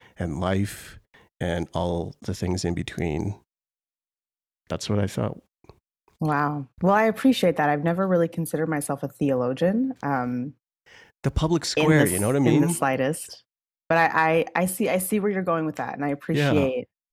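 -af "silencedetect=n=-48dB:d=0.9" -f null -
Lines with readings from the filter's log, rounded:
silence_start: 3.39
silence_end: 4.70 | silence_duration: 1.32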